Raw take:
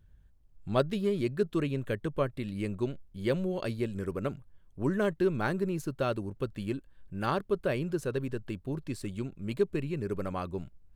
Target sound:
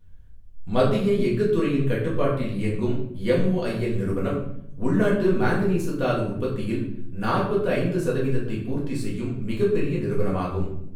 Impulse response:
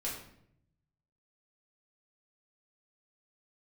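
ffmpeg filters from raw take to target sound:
-filter_complex "[1:a]atrim=start_sample=2205[s0];[0:a][s0]afir=irnorm=-1:irlink=0,volume=1.78"

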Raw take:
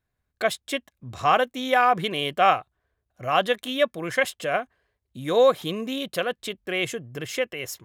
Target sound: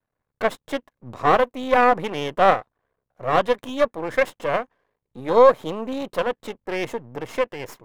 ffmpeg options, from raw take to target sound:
-af "aeval=exprs='max(val(0),0)':c=same,equalizer=f=125:t=o:w=1:g=7,equalizer=f=250:t=o:w=1:g=8,equalizer=f=500:t=o:w=1:g=11,equalizer=f=1000:t=o:w=1:g=11,equalizer=f=2000:t=o:w=1:g=5,volume=0.531"

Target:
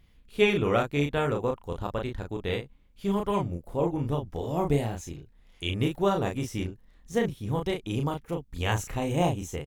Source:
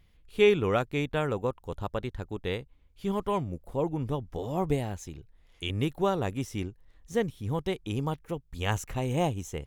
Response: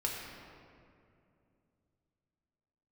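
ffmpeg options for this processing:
-filter_complex "[0:a]asplit=2[s0][s1];[s1]adelay=35,volume=0.631[s2];[s0][s2]amix=inputs=2:normalize=0,tremolo=f=220:d=0.261,volume=1.26"

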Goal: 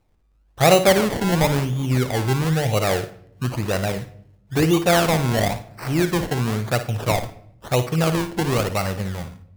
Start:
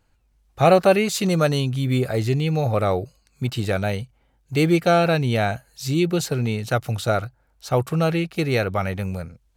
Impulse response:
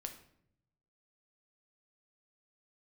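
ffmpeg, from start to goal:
-filter_complex "[0:a]acrusher=samples=25:mix=1:aa=0.000001:lfo=1:lforange=25:lforate=0.99,asplit=2[s0][s1];[1:a]atrim=start_sample=2205,adelay=56[s2];[s1][s2]afir=irnorm=-1:irlink=0,volume=0.447[s3];[s0][s3]amix=inputs=2:normalize=0"

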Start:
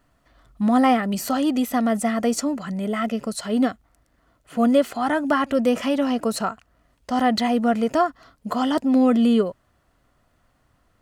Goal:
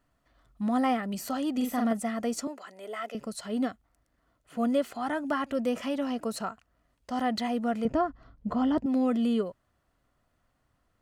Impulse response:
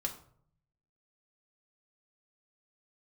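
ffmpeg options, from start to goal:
-filter_complex "[0:a]asettb=1/sr,asplit=3[s0][s1][s2];[s0]atrim=end=1.534[s3];[s1]atrim=start=1.53:end=1.93,asetpts=PTS-STARTPTS,afade=t=in:d=0.004:c=qsin,afade=t=out:st=0.396:d=0.004:c=qsin,asplit=2[s4][s5];[s5]adelay=44,volume=0.708[s6];[s4][s6]amix=inputs=2:normalize=0,atrim=end_sample=17640[s7];[s2]atrim=start=1.926[s8];[s3][s7]acrossfade=d=0.004:c1=hsin:c2=qsin[s9];[s9][s8]acrossfade=d=0.004:c1=qsin:c2=hsin,asettb=1/sr,asplit=3[s10][s11][s12];[s10]atrim=end=2.474[s13];[s11]atrim=start=2.47:end=3.15,asetpts=PTS-STARTPTS,afade=t=in:d=0.004:c=qsin,afade=t=out:st=0.676:d=0.004:c=qsin,highpass=f=370:w=0.5412,highpass=f=370:w=1.3066[s14];[s12]atrim=start=3.146[s15];[s13][s14]acrossfade=d=0.004:c1=hsin:c2=qsin[s16];[s16][s15]acrossfade=d=0.004:c1=qsin:c2=hsin,asettb=1/sr,asplit=3[s17][s18][s19];[s17]atrim=end=7.854[s20];[s18]atrim=start=7.85:end=8.86,asetpts=PTS-STARTPTS,afade=t=in:d=0.004:c=qsin,afade=t=out:st=1.006:d=0.004:c=qsin,aemphasis=mode=reproduction:type=riaa[s21];[s19]atrim=start=8.856[s22];[s20][s21]acrossfade=d=0.004:c1=hsin:c2=qsin[s23];[s23][s22]acrossfade=d=0.004:c1=qsin:c2=hsin,volume=0.355"

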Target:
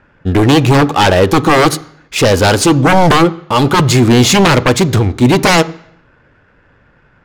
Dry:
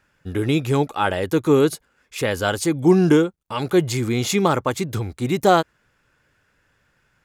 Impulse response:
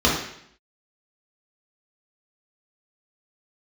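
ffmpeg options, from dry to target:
-filter_complex "[0:a]aeval=exprs='0.75*sin(PI/2*5.62*val(0)/0.75)':c=same,adynamicsmooth=sensitivity=3:basefreq=1800,asplit=2[s0][s1];[1:a]atrim=start_sample=2205[s2];[s1][s2]afir=irnorm=-1:irlink=0,volume=0.02[s3];[s0][s3]amix=inputs=2:normalize=0,volume=0.75"

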